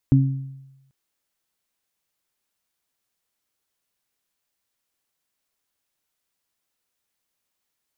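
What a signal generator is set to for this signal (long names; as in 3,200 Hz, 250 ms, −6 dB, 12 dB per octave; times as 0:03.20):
harmonic partials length 0.79 s, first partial 135 Hz, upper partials −3 dB, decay 0.97 s, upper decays 0.56 s, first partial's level −11 dB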